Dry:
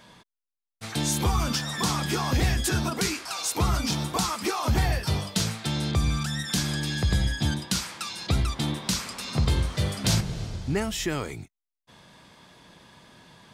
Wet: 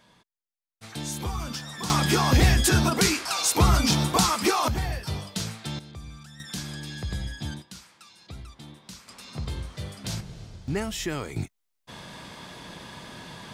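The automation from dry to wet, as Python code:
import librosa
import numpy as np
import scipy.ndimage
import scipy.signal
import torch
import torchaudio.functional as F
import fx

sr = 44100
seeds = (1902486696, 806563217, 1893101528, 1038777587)

y = fx.gain(x, sr, db=fx.steps((0.0, -7.0), (1.9, 5.0), (4.68, -5.0), (5.79, -17.0), (6.4, -8.0), (7.62, -17.0), (9.08, -9.5), (10.68, -2.0), (11.36, 10.0)))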